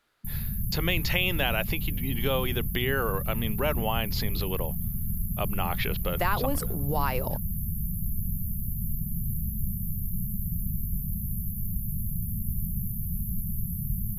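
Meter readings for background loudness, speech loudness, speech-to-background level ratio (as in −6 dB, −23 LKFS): −32.0 LKFS, −30.5 LKFS, 1.5 dB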